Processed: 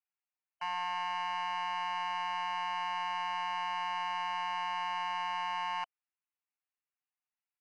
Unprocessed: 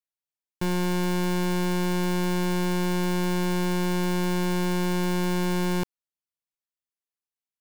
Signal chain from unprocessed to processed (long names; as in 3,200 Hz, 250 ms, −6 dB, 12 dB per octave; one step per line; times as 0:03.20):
linear-phase brick-wall band-pass 680–3,000 Hz
soft clipping −28.5 dBFS, distortion −17 dB
comb filter 6.6 ms, depth 93%
level −2 dB